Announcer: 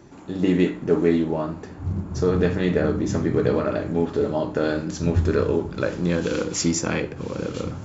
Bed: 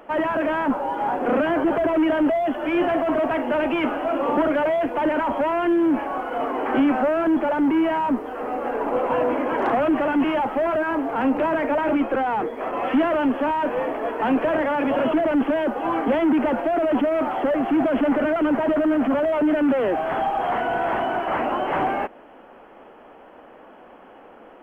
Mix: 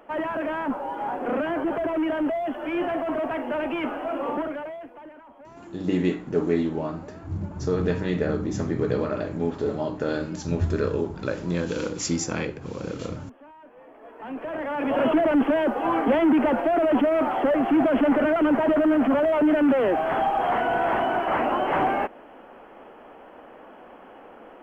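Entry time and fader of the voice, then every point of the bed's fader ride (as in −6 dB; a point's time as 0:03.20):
5.45 s, −4.0 dB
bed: 0:04.28 −5.5 dB
0:05.21 −26 dB
0:13.74 −26 dB
0:15.04 0 dB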